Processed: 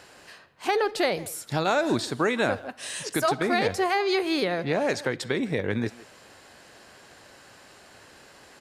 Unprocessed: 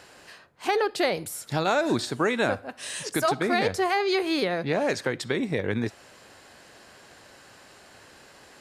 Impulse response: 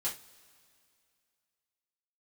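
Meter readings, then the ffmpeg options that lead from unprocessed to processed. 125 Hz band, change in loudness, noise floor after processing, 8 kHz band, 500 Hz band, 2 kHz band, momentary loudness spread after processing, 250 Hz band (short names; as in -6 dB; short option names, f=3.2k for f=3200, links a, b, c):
0.0 dB, 0.0 dB, -52 dBFS, 0.0 dB, 0.0 dB, 0.0 dB, 7 LU, 0.0 dB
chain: -filter_complex "[0:a]asplit=2[a][b];[b]adelay=160,highpass=300,lowpass=3.4k,asoftclip=type=hard:threshold=-21.5dB,volume=-17dB[c];[a][c]amix=inputs=2:normalize=0"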